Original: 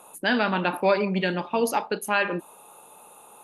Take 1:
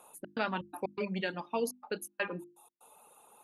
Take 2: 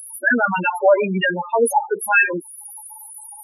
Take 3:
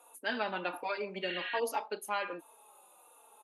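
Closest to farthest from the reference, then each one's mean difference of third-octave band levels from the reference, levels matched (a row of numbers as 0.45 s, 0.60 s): 3, 1, 2; 3.5 dB, 6.0 dB, 13.5 dB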